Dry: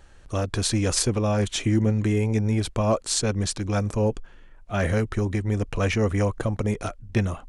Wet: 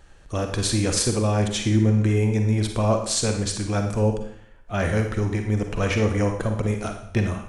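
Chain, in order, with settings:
four-comb reverb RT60 0.66 s, DRR 4.5 dB

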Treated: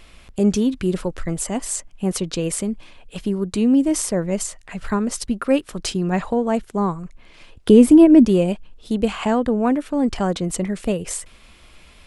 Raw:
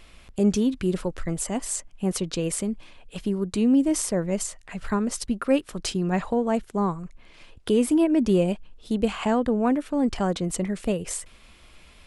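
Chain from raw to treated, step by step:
0:07.69–0:08.25: low-shelf EQ 490 Hz +10.5 dB
level +3.5 dB

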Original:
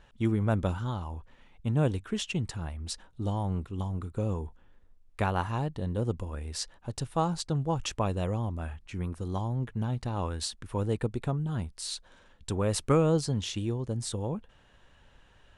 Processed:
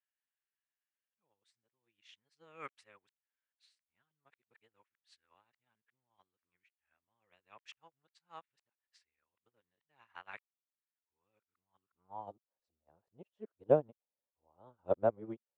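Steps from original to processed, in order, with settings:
played backwards from end to start
band-pass filter sweep 2,100 Hz → 570 Hz, 0:11.60–0:12.45
expander for the loud parts 2.5 to 1, over −55 dBFS
level +8.5 dB

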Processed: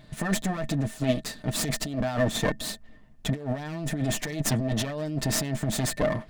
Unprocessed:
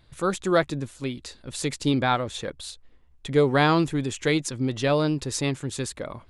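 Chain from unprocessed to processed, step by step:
lower of the sound and its delayed copy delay 6.7 ms
low-shelf EQ 130 Hz +3 dB
compressor whose output falls as the input rises −31 dBFS, ratio −1
hollow resonant body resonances 220/640/1,800 Hz, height 16 dB, ringing for 90 ms

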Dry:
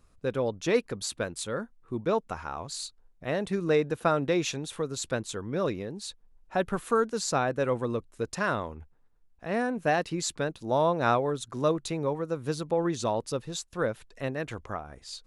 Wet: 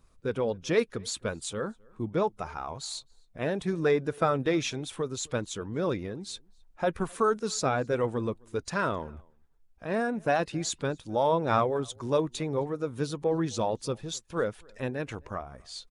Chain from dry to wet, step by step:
spectral magnitudes quantised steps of 15 dB
slap from a distant wall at 43 metres, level −28 dB
wrong playback speed 25 fps video run at 24 fps

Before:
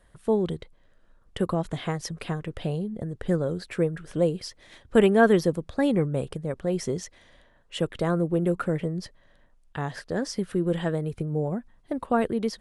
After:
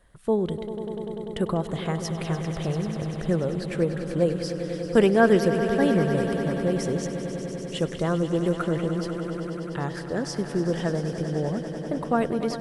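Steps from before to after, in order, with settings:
echo that builds up and dies away 98 ms, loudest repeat 5, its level −13 dB

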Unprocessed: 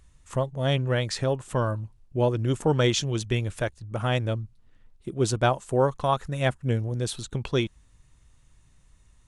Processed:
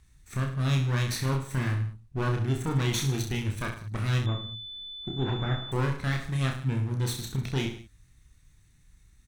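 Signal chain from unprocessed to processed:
lower of the sound and its delayed copy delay 0.5 ms
parametric band 560 Hz −9.5 dB 0.8 octaves
brickwall limiter −19.5 dBFS, peak gain reduction 7.5 dB
reverse bouncing-ball delay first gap 30 ms, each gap 1.15×, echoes 5
0:04.26–0:05.72: switching amplifier with a slow clock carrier 3,500 Hz
level −1 dB

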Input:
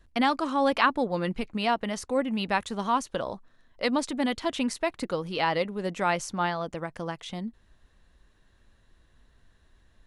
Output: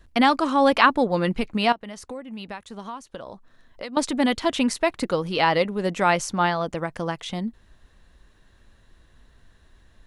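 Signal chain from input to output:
0:01.72–0:03.97: downward compressor 6 to 1, threshold −40 dBFS, peak gain reduction 18.5 dB
level +6 dB

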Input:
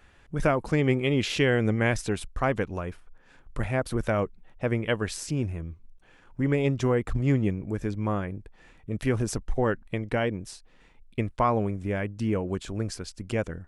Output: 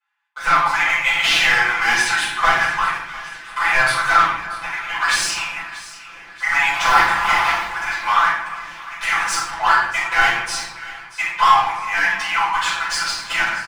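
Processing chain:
0:06.73–0:07.67: sub-harmonics by changed cycles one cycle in 2, inverted
automatic gain control gain up to 12.5 dB
Butterworth high-pass 850 Hz 72 dB per octave
0:04.21–0:04.95: downward compressor 4 to 1, threshold −38 dBFS, peak gain reduction 19 dB
leveller curve on the samples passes 5
low-pass filter 2,600 Hz 6 dB per octave
comb filter 5.9 ms, depth 88%
echo with a time of its own for lows and highs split 1,500 Hz, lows 351 ms, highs 635 ms, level −16 dB
rectangular room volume 200 cubic metres, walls mixed, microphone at 5 metres
level −17.5 dB

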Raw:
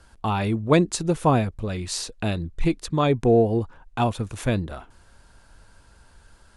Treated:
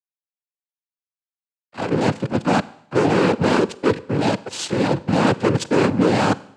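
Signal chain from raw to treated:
played backwards from end to start
low-pass filter 3,700 Hz 12 dB per octave
parametric band 300 Hz +12 dB 0.79 octaves
in parallel at −0.5 dB: downward compressor, threshold −22 dBFS, peak gain reduction 15 dB
on the sum: fuzz pedal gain 23 dB, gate −32 dBFS
cochlear-implant simulation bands 8
four-comb reverb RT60 0.71 s, combs from 33 ms, DRR 18.5 dB
level −1 dB

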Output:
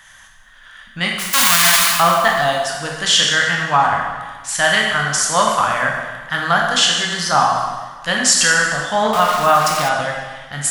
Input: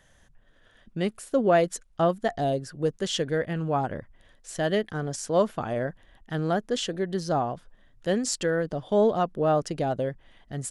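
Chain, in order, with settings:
0:01.18–0:01.89: spectral envelope flattened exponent 0.1
convolution reverb RT60 1.4 s, pre-delay 7 ms, DRR −1 dB
in parallel at −8.5 dB: soft clipping −11 dBFS, distortion −19 dB
on the sum: parametric band 380 Hz −9.5 dB 0.69 octaves
0:09.13–0:09.89: centre clipping without the shift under −31.5 dBFS
low shelf with overshoot 730 Hz −14 dB, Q 1.5
boost into a limiter +14 dB
level −1 dB

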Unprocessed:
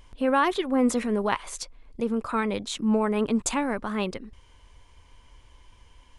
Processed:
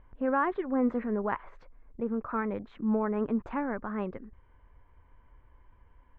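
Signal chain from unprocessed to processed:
Chebyshev low-pass filter 1,700 Hz, order 3
level −4.5 dB

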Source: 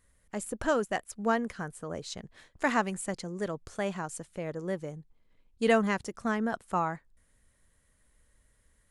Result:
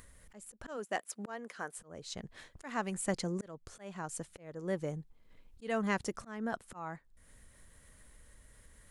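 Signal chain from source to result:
0:00.76–0:01.78: high-pass filter 210 Hz → 430 Hz 12 dB per octave
volume swells 562 ms
upward compression, threshold −52 dBFS
level +2.5 dB

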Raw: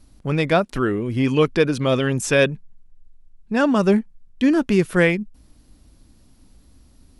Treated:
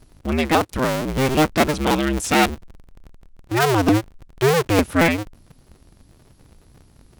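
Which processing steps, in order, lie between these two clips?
sub-harmonics by changed cycles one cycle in 2, inverted

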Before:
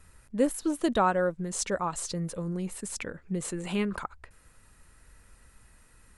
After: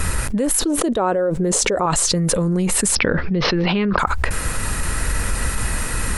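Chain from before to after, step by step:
0:00.61–0:01.86: parametric band 440 Hz +11.5 dB 1.4 octaves
0:02.95–0:03.99: Butterworth low-pass 5,400 Hz 96 dB per octave
envelope flattener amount 100%
level −4.5 dB

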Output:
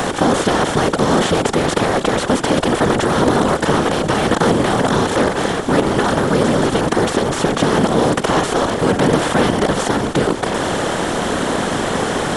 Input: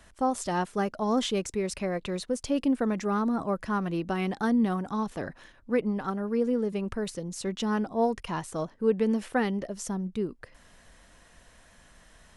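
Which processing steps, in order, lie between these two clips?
compressor on every frequency bin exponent 0.2
0:00.60–0:01.08: surface crackle 21 per second −47 dBFS
random phases in short frames
level +4 dB

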